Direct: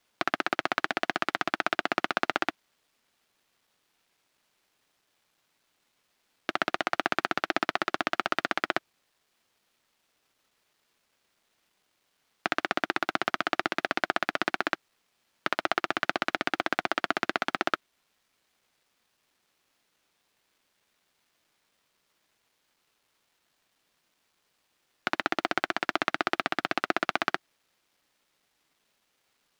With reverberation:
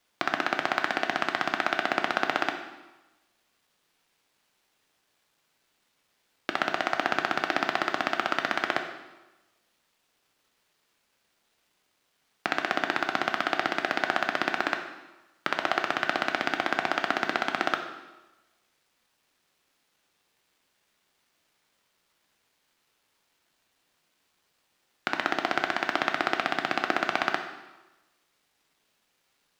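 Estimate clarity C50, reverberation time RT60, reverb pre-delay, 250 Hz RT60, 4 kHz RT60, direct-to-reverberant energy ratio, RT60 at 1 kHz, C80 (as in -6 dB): 7.5 dB, 1.1 s, 6 ms, 1.1 s, 1.0 s, 5.0 dB, 1.1 s, 10.0 dB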